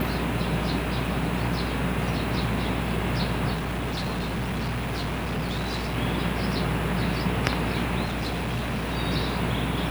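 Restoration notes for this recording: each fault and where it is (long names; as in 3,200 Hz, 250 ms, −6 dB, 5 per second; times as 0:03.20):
mains buzz 60 Hz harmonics 14 −31 dBFS
0:03.53–0:05.97: clipping −25 dBFS
0:08.04–0:08.97: clipping −24.5 dBFS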